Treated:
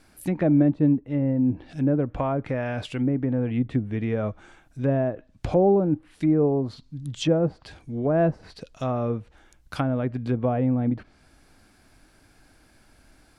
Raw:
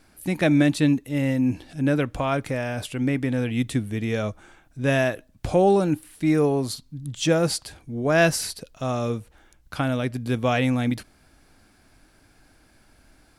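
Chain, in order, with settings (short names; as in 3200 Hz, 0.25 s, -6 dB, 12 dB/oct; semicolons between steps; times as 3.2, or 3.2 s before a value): treble ducked by the level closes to 700 Hz, closed at -19.5 dBFS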